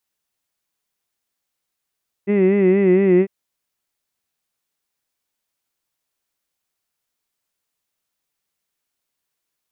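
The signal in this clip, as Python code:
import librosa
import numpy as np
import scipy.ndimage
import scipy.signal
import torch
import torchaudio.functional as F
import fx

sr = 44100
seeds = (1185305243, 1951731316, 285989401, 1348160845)

y = fx.formant_vowel(sr, seeds[0], length_s=1.0, hz=197.0, glide_st=-1.0, vibrato_hz=4.3, vibrato_st=0.9, f1_hz=350.0, f2_hz=2000.0, f3_hz=2600.0)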